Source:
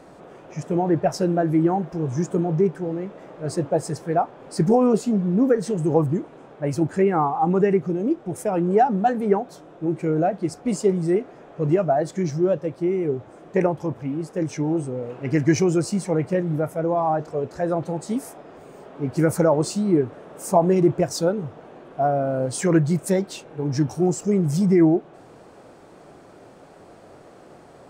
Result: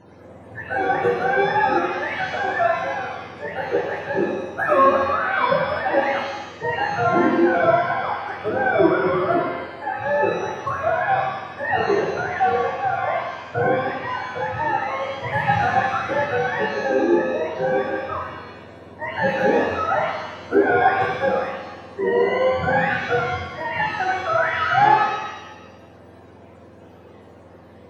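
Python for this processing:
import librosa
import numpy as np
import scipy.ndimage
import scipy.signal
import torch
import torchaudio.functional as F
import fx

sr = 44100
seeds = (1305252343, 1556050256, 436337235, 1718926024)

y = fx.octave_mirror(x, sr, pivot_hz=520.0)
y = fx.rev_shimmer(y, sr, seeds[0], rt60_s=1.1, semitones=7, shimmer_db=-8, drr_db=-1.0)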